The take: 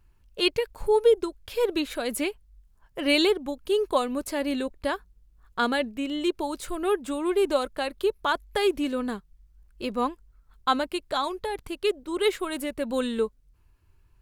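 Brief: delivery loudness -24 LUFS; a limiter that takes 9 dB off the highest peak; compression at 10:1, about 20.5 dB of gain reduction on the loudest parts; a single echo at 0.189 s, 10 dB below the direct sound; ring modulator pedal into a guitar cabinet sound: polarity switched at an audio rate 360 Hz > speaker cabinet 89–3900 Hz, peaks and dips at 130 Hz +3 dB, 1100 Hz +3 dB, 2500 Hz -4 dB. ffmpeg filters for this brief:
-af "acompressor=threshold=-36dB:ratio=10,alimiter=level_in=8dB:limit=-24dB:level=0:latency=1,volume=-8dB,aecho=1:1:189:0.316,aeval=exprs='val(0)*sgn(sin(2*PI*360*n/s))':c=same,highpass=89,equalizer=f=130:t=q:w=4:g=3,equalizer=f=1.1k:t=q:w=4:g=3,equalizer=f=2.5k:t=q:w=4:g=-4,lowpass=f=3.9k:w=0.5412,lowpass=f=3.9k:w=1.3066,volume=19dB"

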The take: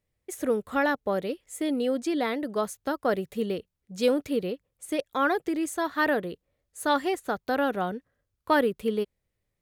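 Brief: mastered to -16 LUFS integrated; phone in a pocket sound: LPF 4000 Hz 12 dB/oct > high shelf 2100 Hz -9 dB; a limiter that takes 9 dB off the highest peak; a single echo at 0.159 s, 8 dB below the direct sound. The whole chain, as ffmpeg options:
-af "alimiter=limit=-19dB:level=0:latency=1,lowpass=4k,highshelf=f=2.1k:g=-9,aecho=1:1:159:0.398,volume=14.5dB"

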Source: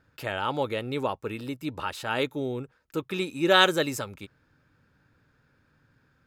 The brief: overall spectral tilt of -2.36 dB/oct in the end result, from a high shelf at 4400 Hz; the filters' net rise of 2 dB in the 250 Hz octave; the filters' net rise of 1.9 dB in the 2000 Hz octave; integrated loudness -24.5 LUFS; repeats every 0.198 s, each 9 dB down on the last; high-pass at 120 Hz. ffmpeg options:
-af "highpass=120,equalizer=f=250:t=o:g=3,equalizer=f=2k:t=o:g=4,highshelf=f=4.4k:g=-7.5,aecho=1:1:198|396|594|792:0.355|0.124|0.0435|0.0152,volume=2dB"

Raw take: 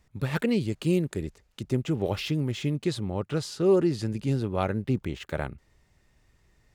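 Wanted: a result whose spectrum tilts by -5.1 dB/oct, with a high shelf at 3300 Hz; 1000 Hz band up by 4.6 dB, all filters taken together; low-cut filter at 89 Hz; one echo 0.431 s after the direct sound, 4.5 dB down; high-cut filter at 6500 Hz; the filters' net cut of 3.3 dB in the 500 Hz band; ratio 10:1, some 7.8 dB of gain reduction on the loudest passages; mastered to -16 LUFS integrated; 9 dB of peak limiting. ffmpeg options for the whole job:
-af "highpass=89,lowpass=6.5k,equalizer=f=500:t=o:g=-6.5,equalizer=f=1k:t=o:g=7.5,highshelf=f=3.3k:g=9,acompressor=threshold=-28dB:ratio=10,alimiter=limit=-23.5dB:level=0:latency=1,aecho=1:1:431:0.596,volume=18dB"

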